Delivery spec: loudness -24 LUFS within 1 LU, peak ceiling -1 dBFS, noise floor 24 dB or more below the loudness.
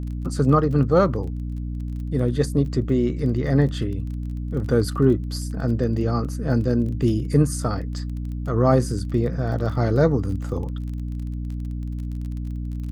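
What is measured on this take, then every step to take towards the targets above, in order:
tick rate 26 per s; hum 60 Hz; highest harmonic 300 Hz; hum level -26 dBFS; loudness -23.0 LUFS; peak level -5.0 dBFS; loudness target -24.0 LUFS
-> de-click; hum notches 60/120/180/240/300 Hz; trim -1 dB

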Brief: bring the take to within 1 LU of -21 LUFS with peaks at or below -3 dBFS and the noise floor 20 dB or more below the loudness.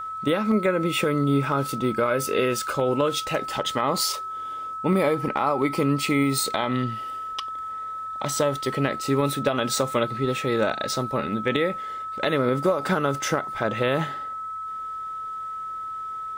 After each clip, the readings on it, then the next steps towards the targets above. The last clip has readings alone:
steady tone 1.3 kHz; tone level -30 dBFS; loudness -25.0 LUFS; peak level -9.5 dBFS; loudness target -21.0 LUFS
-> band-stop 1.3 kHz, Q 30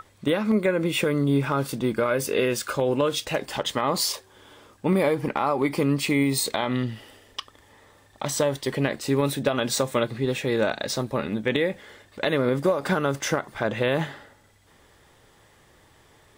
steady tone not found; loudness -25.0 LUFS; peak level -10.5 dBFS; loudness target -21.0 LUFS
-> trim +4 dB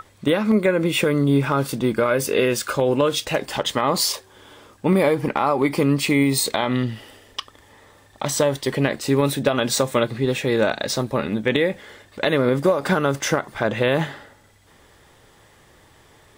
loudness -21.0 LUFS; peak level -6.5 dBFS; noise floor -53 dBFS

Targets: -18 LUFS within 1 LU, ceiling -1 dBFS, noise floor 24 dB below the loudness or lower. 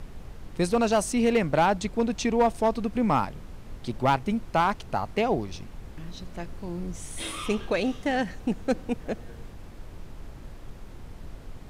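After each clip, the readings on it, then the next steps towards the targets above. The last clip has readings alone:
clipped samples 0.5%; clipping level -15.0 dBFS; noise floor -44 dBFS; noise floor target -51 dBFS; loudness -27.0 LUFS; peak level -15.0 dBFS; loudness target -18.0 LUFS
-> clip repair -15 dBFS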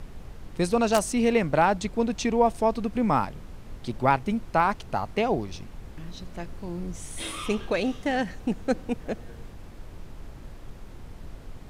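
clipped samples 0.0%; noise floor -44 dBFS; noise floor target -51 dBFS
-> noise print and reduce 7 dB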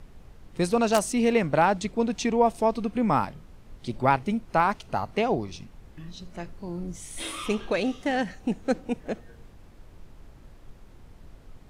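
noise floor -50 dBFS; noise floor target -51 dBFS
-> noise print and reduce 6 dB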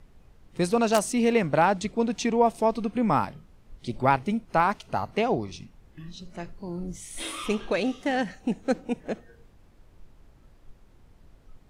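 noise floor -56 dBFS; loudness -26.5 LUFS; peak level -6.0 dBFS; loudness target -18.0 LUFS
-> trim +8.5 dB; peak limiter -1 dBFS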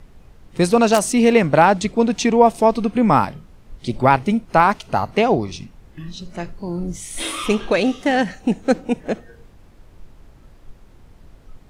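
loudness -18.0 LUFS; peak level -1.0 dBFS; noise floor -48 dBFS

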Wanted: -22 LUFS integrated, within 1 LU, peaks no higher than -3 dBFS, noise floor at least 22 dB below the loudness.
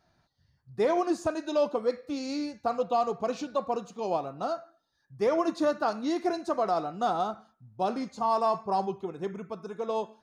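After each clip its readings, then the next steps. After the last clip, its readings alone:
loudness -30.0 LUFS; peak level -16.0 dBFS; loudness target -22.0 LUFS
-> trim +8 dB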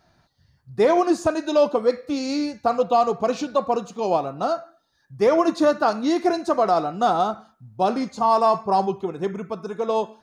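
loudness -22.0 LUFS; peak level -8.0 dBFS; noise floor -66 dBFS

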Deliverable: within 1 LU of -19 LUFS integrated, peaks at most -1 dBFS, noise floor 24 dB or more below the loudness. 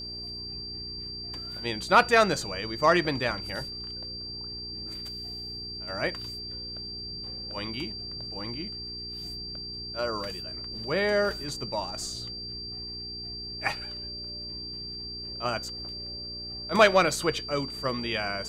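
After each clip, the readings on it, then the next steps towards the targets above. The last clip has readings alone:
hum 60 Hz; highest harmonic 420 Hz; hum level -43 dBFS; steady tone 4.7 kHz; tone level -36 dBFS; loudness -29.5 LUFS; peak level -7.0 dBFS; loudness target -19.0 LUFS
-> de-hum 60 Hz, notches 7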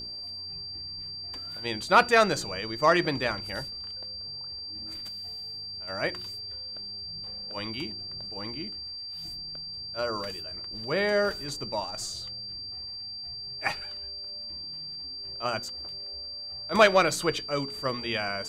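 hum not found; steady tone 4.7 kHz; tone level -36 dBFS
-> band-stop 4.7 kHz, Q 30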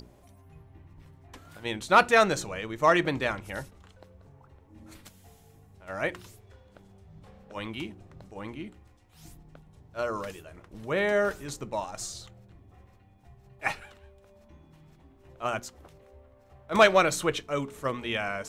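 steady tone not found; loudness -27.5 LUFS; peak level -6.5 dBFS; loudness target -19.0 LUFS
-> trim +8.5 dB; peak limiter -1 dBFS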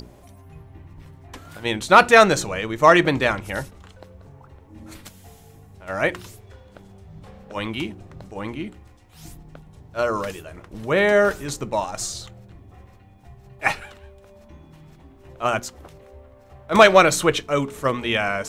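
loudness -19.5 LUFS; peak level -1.0 dBFS; noise floor -49 dBFS

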